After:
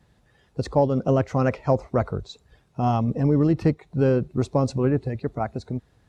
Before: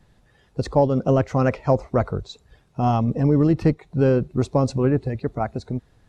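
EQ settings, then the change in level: high-pass 41 Hz; -2.0 dB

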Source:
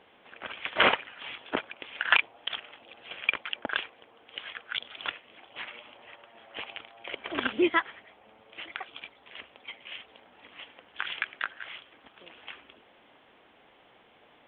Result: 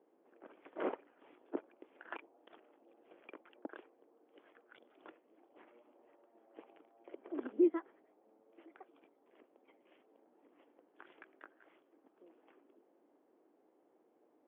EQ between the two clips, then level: ladder band-pass 370 Hz, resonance 55%; +1.0 dB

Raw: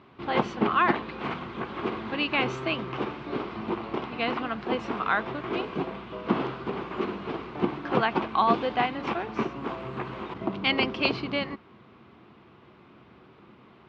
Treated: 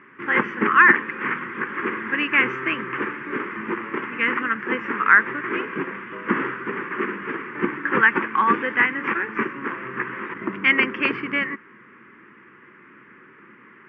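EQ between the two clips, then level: band-pass 250–2800 Hz; peaking EQ 1.8 kHz +12.5 dB 0.55 oct; static phaser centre 1.7 kHz, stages 4; +7.0 dB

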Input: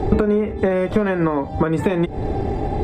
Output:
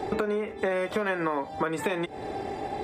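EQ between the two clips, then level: tilt EQ +4 dB/octave; bass shelf 150 Hz -6.5 dB; treble shelf 3 kHz -8 dB; -3.5 dB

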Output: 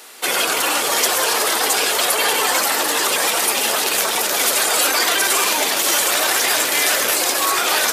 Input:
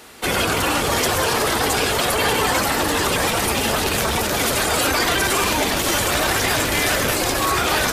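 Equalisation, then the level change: high-pass 410 Hz 12 dB/octave; treble shelf 3.9 kHz +7 dB; 0.0 dB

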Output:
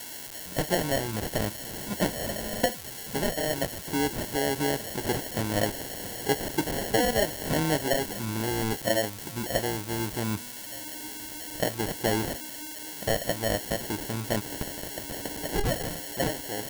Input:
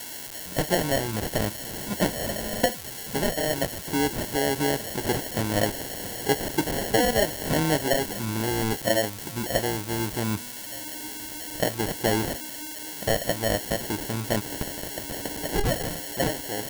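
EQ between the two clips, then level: flat; -2.5 dB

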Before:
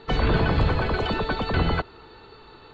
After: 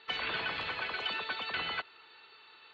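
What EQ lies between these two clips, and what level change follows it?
band-pass filter 2.7 kHz, Q 1.5; 0.0 dB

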